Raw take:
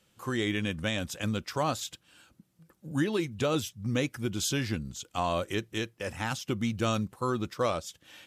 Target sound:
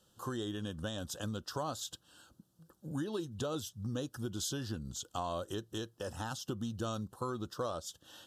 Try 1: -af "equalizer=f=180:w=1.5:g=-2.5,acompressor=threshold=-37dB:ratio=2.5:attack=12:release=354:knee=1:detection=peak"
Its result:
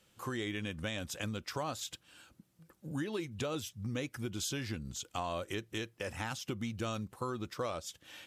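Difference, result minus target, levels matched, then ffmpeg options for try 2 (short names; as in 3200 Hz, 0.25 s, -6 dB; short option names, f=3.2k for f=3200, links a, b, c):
2000 Hz band +6.5 dB
-af "equalizer=f=180:w=1.5:g=-2.5,acompressor=threshold=-37dB:ratio=2.5:attack=12:release=354:knee=1:detection=peak,asuperstop=centerf=2200:order=4:qfactor=1.5"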